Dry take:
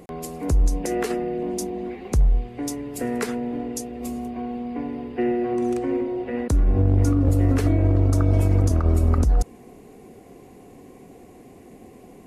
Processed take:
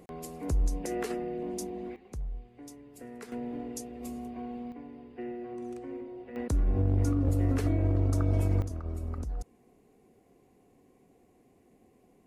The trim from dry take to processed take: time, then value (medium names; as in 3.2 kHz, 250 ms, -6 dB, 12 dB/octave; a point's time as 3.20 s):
-8.5 dB
from 1.96 s -19 dB
from 3.32 s -9 dB
from 4.72 s -16 dB
from 6.36 s -8 dB
from 8.62 s -17 dB